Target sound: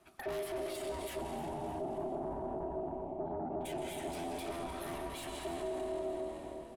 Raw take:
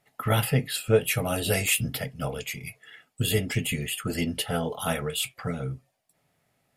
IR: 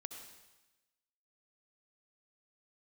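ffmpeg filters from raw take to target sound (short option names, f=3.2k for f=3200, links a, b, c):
-filter_complex "[0:a]volume=28dB,asoftclip=hard,volume=-28dB,asettb=1/sr,asplit=3[a][b][c];[a]atrim=end=1.214[d];[b]atrim=start=1.21:end=3.61,asetpts=PTS-STARTPTS,afade=t=in:d=0.004:c=qsin,afade=t=out:st=2.396:d=0.004:c=qsin,lowpass=f=340:t=q:w=3.9[e];[c]atrim=start=3.606[f];[d][e]acrossfade=d=0.004:c1=hsin:c2=qsin[g];[g][f]acrossfade=d=0.004:c1=qsin:c2=hsin[h];[1:a]atrim=start_sample=2205,asetrate=22932,aresample=44100[i];[h][i]afir=irnorm=-1:irlink=0,alimiter=level_in=8.5dB:limit=-24dB:level=0:latency=1:release=99,volume=-8.5dB,asoftclip=type=tanh:threshold=-39dB,acompressor=threshold=-48dB:ratio=4,equalizer=f=120:t=o:w=2.9:g=9,aeval=exprs='val(0)*sin(2*PI*510*n/s)':c=same,asplit=5[j][k][l][m][n];[k]adelay=308,afreqshift=-75,volume=-13dB[o];[l]adelay=616,afreqshift=-150,volume=-20.5dB[p];[m]adelay=924,afreqshift=-225,volume=-28.1dB[q];[n]adelay=1232,afreqshift=-300,volume=-35.6dB[r];[j][o][p][q][r]amix=inputs=5:normalize=0,volume=6dB"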